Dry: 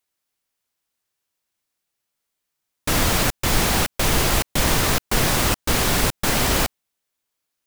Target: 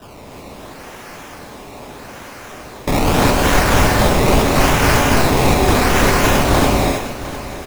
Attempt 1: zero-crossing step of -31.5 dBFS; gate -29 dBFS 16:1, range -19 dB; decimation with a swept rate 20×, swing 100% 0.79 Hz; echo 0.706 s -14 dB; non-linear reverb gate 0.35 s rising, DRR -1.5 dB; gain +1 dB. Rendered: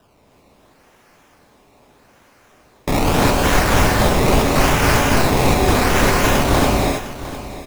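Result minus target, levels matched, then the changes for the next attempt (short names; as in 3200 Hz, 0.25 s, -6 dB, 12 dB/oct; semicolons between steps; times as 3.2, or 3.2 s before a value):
zero-crossing step: distortion -8 dB
change: zero-crossing step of -22 dBFS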